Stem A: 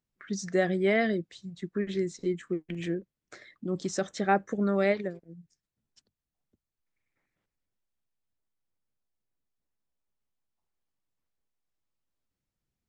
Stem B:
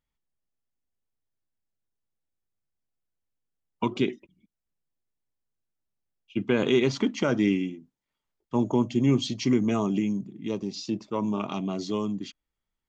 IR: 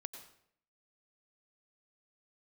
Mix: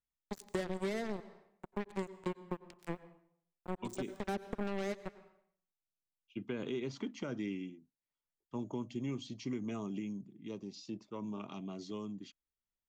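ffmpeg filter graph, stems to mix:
-filter_complex "[0:a]aexciter=amount=4:drive=8.6:freq=7.6k,acrusher=bits=3:mix=0:aa=0.5,volume=-4.5dB,asplit=2[a][b];[b]volume=-5dB[c];[1:a]volume=-13dB,asplit=2[d][e];[e]apad=whole_len=568176[f];[a][f]sidechaincompress=threshold=-45dB:ratio=8:attack=16:release=390[g];[2:a]atrim=start_sample=2205[h];[c][h]afir=irnorm=-1:irlink=0[i];[g][d][i]amix=inputs=3:normalize=0,acrossover=split=520|1100[j][k][l];[j]acompressor=threshold=-35dB:ratio=4[m];[k]acompressor=threshold=-52dB:ratio=4[n];[l]acompressor=threshold=-48dB:ratio=4[o];[m][n][o]amix=inputs=3:normalize=0"

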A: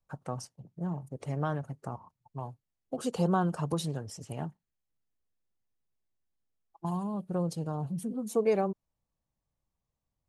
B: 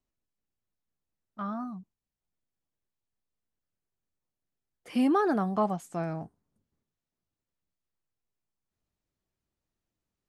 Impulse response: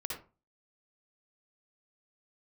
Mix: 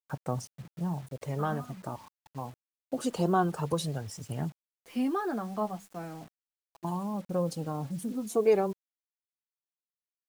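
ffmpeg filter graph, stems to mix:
-filter_complex "[0:a]aphaser=in_gain=1:out_gain=1:delay=3.8:decay=0.39:speed=0.2:type=sinusoidal,volume=1dB[a];[1:a]highpass=f=100:w=0.5412,highpass=f=100:w=1.3066,bandreject=f=50:t=h:w=6,bandreject=f=100:t=h:w=6,bandreject=f=150:t=h:w=6,bandreject=f=200:t=h:w=6,flanger=delay=7.3:depth=3:regen=-23:speed=0.23:shape=sinusoidal,volume=-2.5dB[b];[a][b]amix=inputs=2:normalize=0,acrusher=bits=8:mix=0:aa=0.000001"

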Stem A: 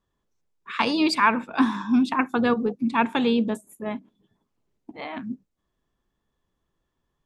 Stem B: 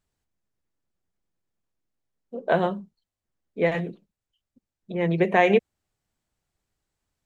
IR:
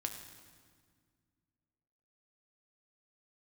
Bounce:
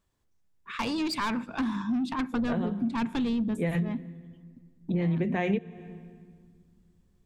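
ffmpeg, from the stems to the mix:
-filter_complex "[0:a]asoftclip=type=tanh:threshold=-20.5dB,volume=-4.5dB,asplit=3[a][b][c];[b]volume=-19dB[d];[1:a]volume=-1dB,asplit=2[e][f];[f]volume=-14dB[g];[c]apad=whole_len=320106[h];[e][h]sidechaincompress=threshold=-39dB:ratio=8:attack=16:release=403[i];[2:a]atrim=start_sample=2205[j];[d][g]amix=inputs=2:normalize=0[k];[k][j]afir=irnorm=-1:irlink=0[l];[a][i][l]amix=inputs=3:normalize=0,asubboost=boost=5.5:cutoff=240,acompressor=threshold=-25dB:ratio=5"

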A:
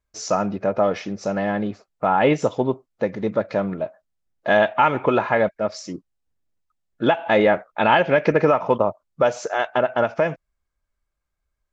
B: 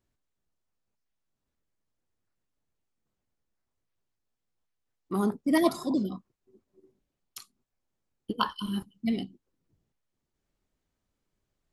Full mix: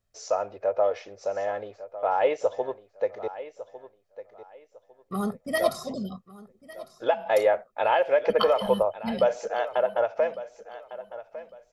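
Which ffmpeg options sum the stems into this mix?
-filter_complex "[0:a]firequalizer=gain_entry='entry(100,0);entry(150,-19);entry(490,13);entry(1200,5)':delay=0.05:min_phase=1,volume=-15dB,asplit=3[a][b][c];[a]atrim=end=3.28,asetpts=PTS-STARTPTS,afade=t=out:st=3.276:d=0.004:c=hsin[d];[b]atrim=start=3.28:end=5.51,asetpts=PTS-STARTPTS,volume=0[e];[c]atrim=start=5.51,asetpts=PTS-STARTPTS,afade=t=in:d=0.004:c=hsin[f];[d][e][f]concat=n=3:v=0:a=1,asplit=2[g][h];[h]volume=-15dB[i];[1:a]aecho=1:1:1.6:0.89,volume=-1.5dB,asplit=2[j][k];[k]volume=-19dB[l];[i][l]amix=inputs=2:normalize=0,aecho=0:1:1153|2306|3459|4612:1|0.25|0.0625|0.0156[m];[g][j][m]amix=inputs=3:normalize=0"

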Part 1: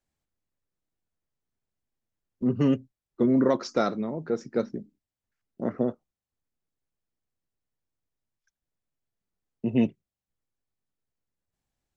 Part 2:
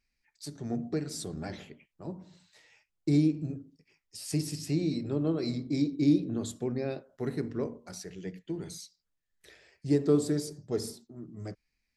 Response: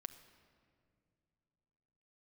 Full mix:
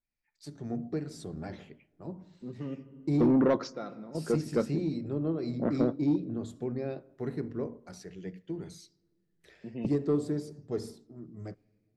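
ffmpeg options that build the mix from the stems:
-filter_complex "[0:a]volume=-1dB,asplit=2[a][b];[b]volume=-10dB[c];[1:a]dynaudnorm=f=130:g=5:m=10dB,adynamicequalizer=threshold=0.0126:dfrequency=1500:dqfactor=0.7:tfrequency=1500:tqfactor=0.7:attack=5:release=100:ratio=0.375:range=3:mode=cutabove:tftype=highshelf,volume=-12.5dB,asplit=3[d][e][f];[e]volume=-12.5dB[g];[f]apad=whole_len=527473[h];[a][h]sidechaingate=range=-33dB:threshold=-55dB:ratio=16:detection=peak[i];[2:a]atrim=start_sample=2205[j];[c][g]amix=inputs=2:normalize=0[k];[k][j]afir=irnorm=-1:irlink=0[l];[i][d][l]amix=inputs=3:normalize=0,highshelf=f=4.5k:g=-10,asoftclip=type=tanh:threshold=-17dB"

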